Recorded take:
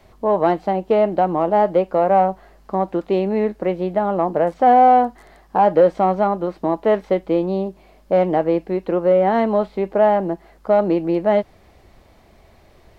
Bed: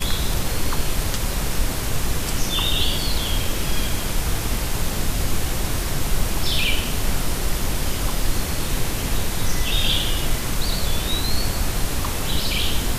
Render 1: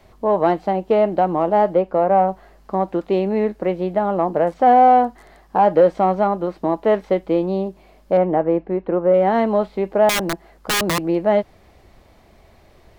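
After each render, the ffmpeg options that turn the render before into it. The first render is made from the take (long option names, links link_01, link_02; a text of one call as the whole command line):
ffmpeg -i in.wav -filter_complex "[0:a]asettb=1/sr,asplit=3[link_01][link_02][link_03];[link_01]atrim=end=1.744[link_04];[link_02]atrim=start=1.74:end=2.28,asetpts=PTS-STARTPTS,afade=type=in:duration=0.004:curve=qsin,afade=type=out:start_time=0.536:duration=0.004:curve=qsin,highshelf=frequency=3100:gain=-9.5[link_05];[link_03]atrim=start=2.276[link_06];[link_04][link_05]acrossfade=duration=0.004:curve1=hsin:curve2=qsin[link_07];[link_07][link_06]acrossfade=duration=0.004:curve1=qsin:curve2=hsin,asettb=1/sr,asplit=3[link_08][link_09][link_10];[link_08]atrim=end=8.174[link_11];[link_09]atrim=start=8.17:end=9.14,asetpts=PTS-STARTPTS,afade=type=in:duration=0.004:curve=qsin,afade=type=out:start_time=0.966:duration=0.004:curve=qsin,lowpass=1800[link_12];[link_10]atrim=start=9.136[link_13];[link_11][link_12]acrossfade=duration=0.004:curve1=hsin:curve2=qsin[link_14];[link_14][link_13]acrossfade=duration=0.004:curve1=qsin:curve2=hsin,asettb=1/sr,asplit=3[link_15][link_16][link_17];[link_15]atrim=end=10.094[link_18];[link_16]atrim=start=10.09:end=11.04,asetpts=PTS-STARTPTS,afade=type=in:duration=0.004:curve=qsin,afade=type=out:start_time=0.946:duration=0.004:curve=qsin,aeval=exprs='(mod(5.01*val(0)+1,2)-1)/5.01':channel_layout=same[link_19];[link_17]atrim=start=11.036[link_20];[link_18][link_19]acrossfade=duration=0.004:curve1=hsin:curve2=qsin[link_21];[link_21][link_20]acrossfade=duration=0.004:curve1=qsin:curve2=hsin" out.wav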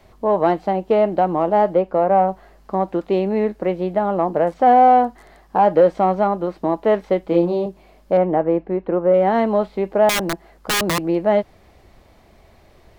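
ffmpeg -i in.wav -filter_complex "[0:a]asettb=1/sr,asplit=3[link_01][link_02][link_03];[link_01]atrim=end=7.254[link_04];[link_02]atrim=start=7.25:end=7.66,asetpts=PTS-STARTPTS,afade=type=in:duration=0.004:curve=qsin,afade=type=out:start_time=0.406:duration=0.004:curve=qsin,asplit=2[link_05][link_06];[link_06]adelay=29,volume=-3.5dB[link_07];[link_05][link_07]amix=inputs=2:normalize=0,atrim=end_sample=18081[link_08];[link_03]atrim=start=7.656[link_09];[link_04][link_08]acrossfade=duration=0.004:curve1=hsin:curve2=qsin[link_10];[link_10][link_09]acrossfade=duration=0.004:curve1=qsin:curve2=hsin" out.wav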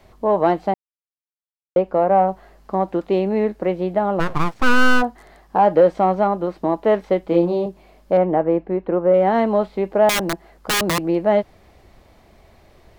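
ffmpeg -i in.wav -filter_complex "[0:a]asplit=3[link_01][link_02][link_03];[link_01]afade=type=out:start_time=4.19:duration=0.02[link_04];[link_02]aeval=exprs='abs(val(0))':channel_layout=same,afade=type=in:start_time=4.19:duration=0.02,afade=type=out:start_time=5.01:duration=0.02[link_05];[link_03]afade=type=in:start_time=5.01:duration=0.02[link_06];[link_04][link_05][link_06]amix=inputs=3:normalize=0,asplit=3[link_07][link_08][link_09];[link_07]atrim=end=0.74,asetpts=PTS-STARTPTS,afade=type=out:start_time=0.736:duration=0.004:curve=hsin[link_10];[link_08]atrim=start=0.74:end=1.76,asetpts=PTS-STARTPTS,volume=0[link_11];[link_09]atrim=start=1.76,asetpts=PTS-STARTPTS,afade=type=in:duration=0.004:curve=hsin[link_12];[link_10][link_11][link_12]concat=n=3:v=0:a=1" out.wav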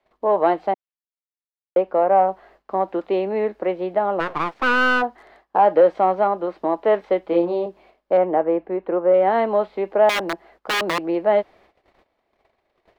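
ffmpeg -i in.wav -filter_complex "[0:a]agate=range=-17dB:threshold=-47dB:ratio=16:detection=peak,acrossover=split=290 4200:gain=0.158 1 0.2[link_01][link_02][link_03];[link_01][link_02][link_03]amix=inputs=3:normalize=0" out.wav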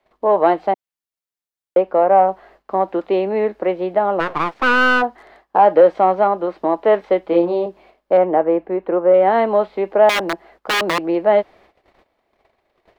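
ffmpeg -i in.wav -af "volume=3.5dB" out.wav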